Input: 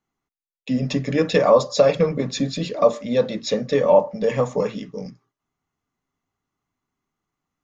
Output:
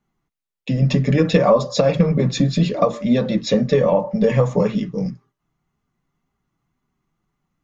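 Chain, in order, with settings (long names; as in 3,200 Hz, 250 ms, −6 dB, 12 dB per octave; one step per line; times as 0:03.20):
bass and treble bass +8 dB, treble −4 dB
downward compressor, threshold −15 dBFS, peak gain reduction 7 dB
flanger 1.9 Hz, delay 4.8 ms, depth 1.4 ms, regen −35%
level +8 dB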